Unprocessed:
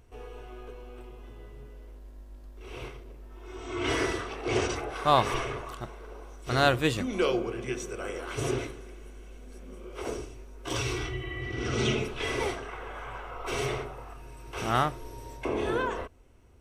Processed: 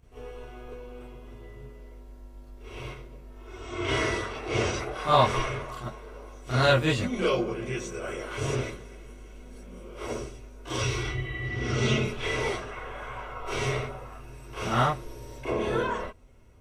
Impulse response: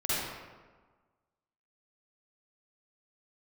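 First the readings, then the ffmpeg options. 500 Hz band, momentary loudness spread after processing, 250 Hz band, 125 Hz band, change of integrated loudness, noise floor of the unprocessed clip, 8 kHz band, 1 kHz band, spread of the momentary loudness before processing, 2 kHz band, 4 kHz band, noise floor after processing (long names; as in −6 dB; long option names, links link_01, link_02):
+1.5 dB, 22 LU, +0.5 dB, +4.5 dB, +1.5 dB, −47 dBFS, +0.5 dB, +1.0 dB, 21 LU, +2.0 dB, +1.5 dB, −47 dBFS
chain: -filter_complex "[1:a]atrim=start_sample=2205,atrim=end_sample=3969,asetrate=70560,aresample=44100[link_01];[0:a][link_01]afir=irnorm=-1:irlink=0,acrossover=split=9200[link_02][link_03];[link_03]acompressor=threshold=-59dB:ratio=4:attack=1:release=60[link_04];[link_02][link_04]amix=inputs=2:normalize=0"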